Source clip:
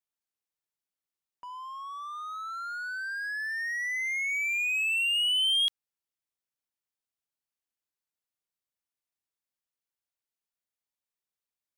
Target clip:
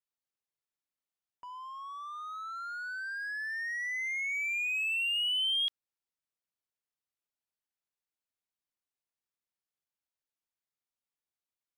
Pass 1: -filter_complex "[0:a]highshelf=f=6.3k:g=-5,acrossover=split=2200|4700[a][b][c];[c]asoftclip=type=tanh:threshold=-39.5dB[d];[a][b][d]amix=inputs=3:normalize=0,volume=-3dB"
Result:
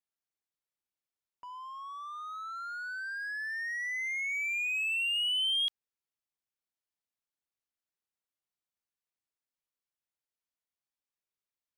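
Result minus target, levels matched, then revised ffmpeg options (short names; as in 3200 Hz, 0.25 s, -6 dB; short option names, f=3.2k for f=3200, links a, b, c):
soft clip: distortion -9 dB
-filter_complex "[0:a]highshelf=f=6.3k:g=-5,acrossover=split=2200|4700[a][b][c];[c]asoftclip=type=tanh:threshold=-47dB[d];[a][b][d]amix=inputs=3:normalize=0,volume=-3dB"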